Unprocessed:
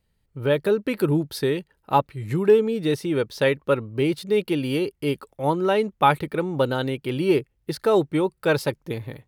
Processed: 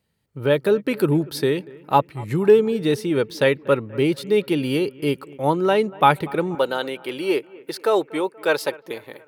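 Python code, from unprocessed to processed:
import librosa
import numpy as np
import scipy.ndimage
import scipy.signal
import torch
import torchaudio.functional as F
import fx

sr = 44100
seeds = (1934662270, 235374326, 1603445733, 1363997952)

y = fx.highpass(x, sr, hz=fx.steps((0.0, 110.0), (6.55, 420.0)), slope=12)
y = fx.echo_bbd(y, sr, ms=239, stages=4096, feedback_pct=54, wet_db=-22)
y = F.gain(torch.from_numpy(y), 2.5).numpy()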